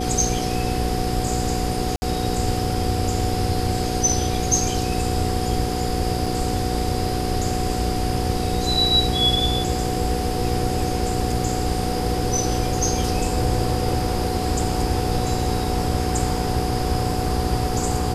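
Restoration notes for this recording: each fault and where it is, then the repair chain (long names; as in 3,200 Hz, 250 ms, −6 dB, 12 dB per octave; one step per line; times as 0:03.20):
mains hum 60 Hz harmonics 8 −26 dBFS
whistle 740 Hz −28 dBFS
0:01.96–0:02.02: drop-out 60 ms
0:06.26: drop-out 4.1 ms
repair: notch filter 740 Hz, Q 30
hum removal 60 Hz, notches 8
repair the gap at 0:01.96, 60 ms
repair the gap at 0:06.26, 4.1 ms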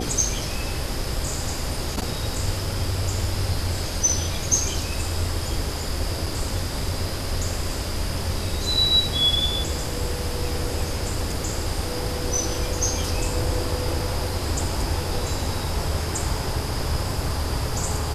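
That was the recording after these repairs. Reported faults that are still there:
none of them is left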